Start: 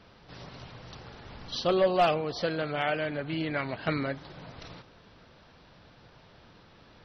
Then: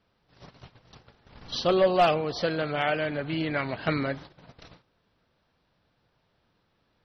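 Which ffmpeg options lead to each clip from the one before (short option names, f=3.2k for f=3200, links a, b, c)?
-af "agate=range=-18dB:threshold=-43dB:ratio=16:detection=peak,volume=2.5dB"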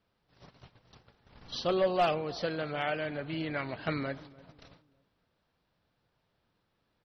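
-filter_complex "[0:a]asplit=2[a][b];[b]adelay=299,lowpass=f=1k:p=1,volume=-20dB,asplit=2[c][d];[d]adelay=299,lowpass=f=1k:p=1,volume=0.4,asplit=2[e][f];[f]adelay=299,lowpass=f=1k:p=1,volume=0.4[g];[a][c][e][g]amix=inputs=4:normalize=0,volume=-6dB"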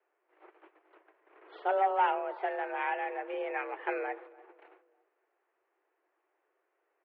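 -af "highpass=f=150:t=q:w=0.5412,highpass=f=150:t=q:w=1.307,lowpass=f=2.3k:t=q:w=0.5176,lowpass=f=2.3k:t=q:w=0.7071,lowpass=f=2.3k:t=q:w=1.932,afreqshift=200"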